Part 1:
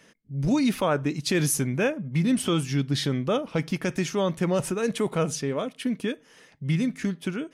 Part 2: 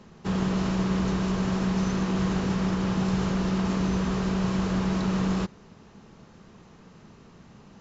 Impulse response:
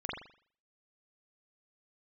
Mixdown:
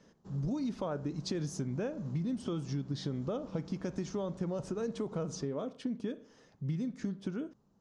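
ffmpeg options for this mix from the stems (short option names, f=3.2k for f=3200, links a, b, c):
-filter_complex "[0:a]lowpass=f=6.1k:w=0.5412,lowpass=f=6.1k:w=1.3066,volume=-4dB,asplit=2[a][b];[b]volume=-20dB[c];[1:a]asoftclip=type=tanh:threshold=-21dB,volume=-19.5dB[d];[2:a]atrim=start_sample=2205[e];[c][e]afir=irnorm=-1:irlink=0[f];[a][d][f]amix=inputs=3:normalize=0,equalizer=f=2.4k:w=0.93:g=-14,acompressor=threshold=-32dB:ratio=6"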